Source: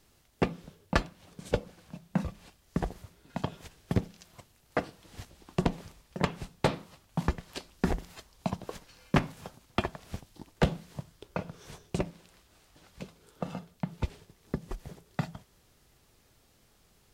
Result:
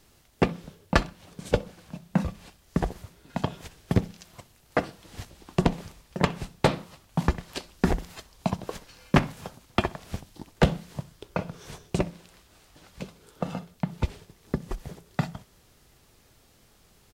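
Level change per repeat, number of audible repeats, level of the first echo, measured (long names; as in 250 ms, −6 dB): −9.5 dB, 2, −23.5 dB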